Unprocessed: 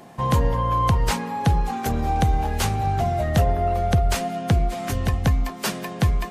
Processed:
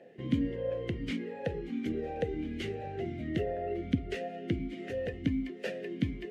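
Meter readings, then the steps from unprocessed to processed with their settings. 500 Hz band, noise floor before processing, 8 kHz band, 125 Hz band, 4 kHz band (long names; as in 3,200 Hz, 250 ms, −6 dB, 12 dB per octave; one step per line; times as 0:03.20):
−7.5 dB, −35 dBFS, below −25 dB, −17.0 dB, −14.0 dB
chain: low-shelf EQ 350 Hz +10 dB
formant filter swept between two vowels e-i 1.4 Hz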